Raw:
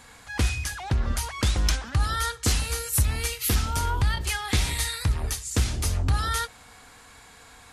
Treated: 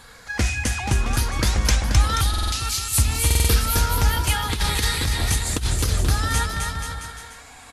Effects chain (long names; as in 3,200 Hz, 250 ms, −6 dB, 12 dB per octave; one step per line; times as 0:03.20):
rippled gain that drifts along the octave scale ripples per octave 0.61, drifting +0.87 Hz, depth 6 dB
0:02.21–0:02.93: Butterworth high-pass 2,400 Hz
bouncing-ball delay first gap 260 ms, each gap 0.85×, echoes 5
flanger 0.53 Hz, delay 1.1 ms, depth 4 ms, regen +77%
0:04.52–0:06.05: compressor whose output falls as the input rises −27 dBFS, ratio −0.5
buffer that repeats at 0:02.29/0:03.26, samples 2,048, times 4
level +7.5 dB